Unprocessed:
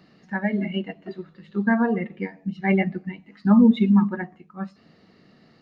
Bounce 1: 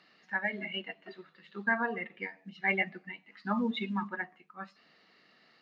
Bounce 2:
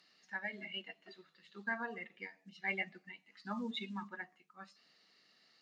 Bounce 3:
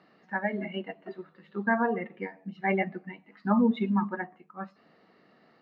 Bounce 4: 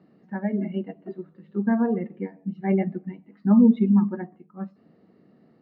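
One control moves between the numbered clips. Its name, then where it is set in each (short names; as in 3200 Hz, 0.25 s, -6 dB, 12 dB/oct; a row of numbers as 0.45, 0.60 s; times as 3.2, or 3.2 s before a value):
band-pass, frequency: 2500, 7200, 970, 320 Hz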